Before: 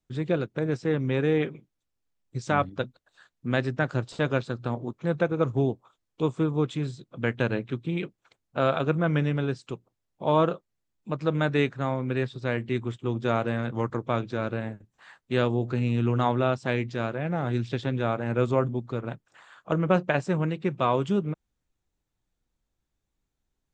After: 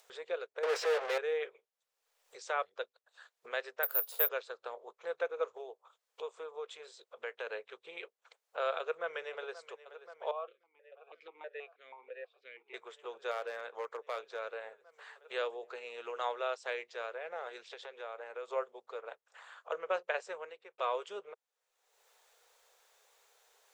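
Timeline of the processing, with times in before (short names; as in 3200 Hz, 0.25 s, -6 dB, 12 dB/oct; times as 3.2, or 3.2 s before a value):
0.63–1.18 overdrive pedal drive 40 dB, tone 1700 Hz, clips at -14 dBFS
3.83–4.29 careless resampling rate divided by 3×, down none, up zero stuff
5.57–7.47 compressor 1.5:1, threshold -32 dBFS
8.79–9.6 echo throw 0.53 s, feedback 85%, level -17 dB
10.31–12.74 vowel sequencer 6.2 Hz
13.31–14.39 hard clip -18 dBFS
16.04–16.7 high shelf 4800 Hz +5 dB
17.69–18.51 compressor 2.5:1, threshold -30 dBFS
20.27–20.78 fade out linear
whole clip: elliptic high-pass 450 Hz, stop band 40 dB; dynamic EQ 810 Hz, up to -4 dB, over -37 dBFS, Q 1.4; upward compressor, threshold -39 dBFS; gain -6.5 dB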